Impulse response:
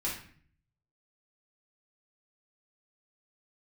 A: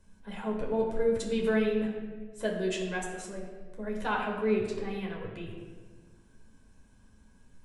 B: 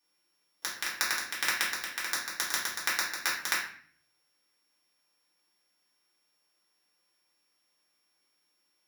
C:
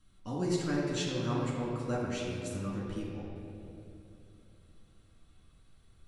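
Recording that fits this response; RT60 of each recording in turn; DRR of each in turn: B; 1.5, 0.50, 2.8 s; -1.5, -6.0, -5.5 dB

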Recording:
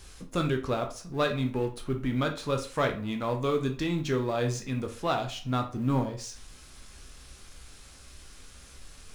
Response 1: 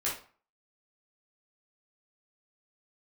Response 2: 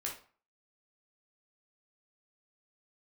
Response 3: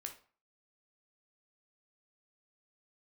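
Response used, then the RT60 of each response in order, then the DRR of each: 3; 0.40, 0.40, 0.40 s; -7.5, -2.5, 3.5 dB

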